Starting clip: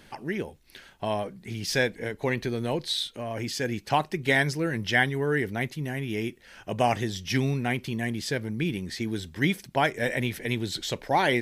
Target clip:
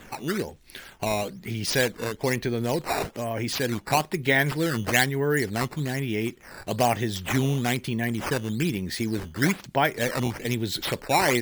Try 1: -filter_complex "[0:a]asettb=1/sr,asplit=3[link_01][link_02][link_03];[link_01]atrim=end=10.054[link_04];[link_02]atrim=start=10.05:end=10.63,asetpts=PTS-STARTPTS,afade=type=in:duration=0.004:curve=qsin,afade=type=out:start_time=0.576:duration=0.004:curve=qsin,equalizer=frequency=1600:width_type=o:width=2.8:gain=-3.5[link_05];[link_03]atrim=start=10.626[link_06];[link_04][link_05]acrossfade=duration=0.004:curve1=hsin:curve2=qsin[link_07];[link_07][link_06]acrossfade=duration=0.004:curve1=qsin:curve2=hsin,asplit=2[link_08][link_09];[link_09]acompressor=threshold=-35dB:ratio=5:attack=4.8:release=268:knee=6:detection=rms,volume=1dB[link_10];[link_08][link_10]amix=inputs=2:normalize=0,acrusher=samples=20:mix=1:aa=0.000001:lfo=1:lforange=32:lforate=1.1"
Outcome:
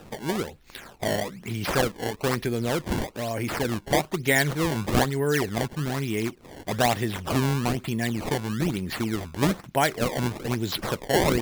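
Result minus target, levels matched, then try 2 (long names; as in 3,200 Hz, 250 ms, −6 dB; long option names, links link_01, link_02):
sample-and-hold swept by an LFO: distortion +6 dB
-filter_complex "[0:a]asettb=1/sr,asplit=3[link_01][link_02][link_03];[link_01]atrim=end=10.054[link_04];[link_02]atrim=start=10.05:end=10.63,asetpts=PTS-STARTPTS,afade=type=in:duration=0.004:curve=qsin,afade=type=out:start_time=0.576:duration=0.004:curve=qsin,equalizer=frequency=1600:width_type=o:width=2.8:gain=-3.5[link_05];[link_03]atrim=start=10.626[link_06];[link_04][link_05]acrossfade=duration=0.004:curve1=hsin:curve2=qsin[link_07];[link_07][link_06]acrossfade=duration=0.004:curve1=qsin:curve2=hsin,asplit=2[link_08][link_09];[link_09]acompressor=threshold=-35dB:ratio=5:attack=4.8:release=268:knee=6:detection=rms,volume=1dB[link_10];[link_08][link_10]amix=inputs=2:normalize=0,acrusher=samples=8:mix=1:aa=0.000001:lfo=1:lforange=12.8:lforate=1.1"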